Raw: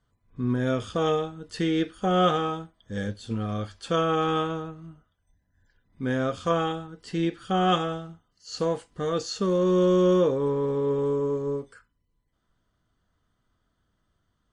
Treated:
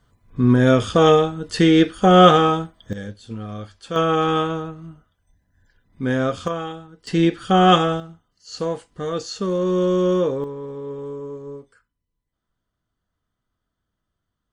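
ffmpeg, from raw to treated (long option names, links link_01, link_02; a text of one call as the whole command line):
ffmpeg -i in.wav -af "asetnsamples=nb_out_samples=441:pad=0,asendcmd='2.93 volume volume -2dB;3.96 volume volume 5.5dB;6.48 volume volume -2.5dB;7.07 volume volume 9dB;8 volume volume 1.5dB;10.44 volume volume -6dB',volume=11dB" out.wav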